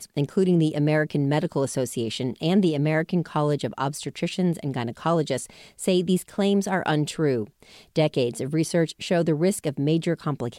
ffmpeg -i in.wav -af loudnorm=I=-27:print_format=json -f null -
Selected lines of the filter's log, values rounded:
"input_i" : "-24.5",
"input_tp" : "-9.2",
"input_lra" : "1.7",
"input_thresh" : "-34.6",